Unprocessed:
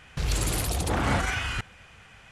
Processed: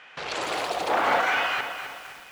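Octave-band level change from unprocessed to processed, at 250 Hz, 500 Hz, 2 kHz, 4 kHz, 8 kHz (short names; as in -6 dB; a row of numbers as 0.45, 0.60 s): -6.5, +5.5, +5.5, +2.5, -8.5 dB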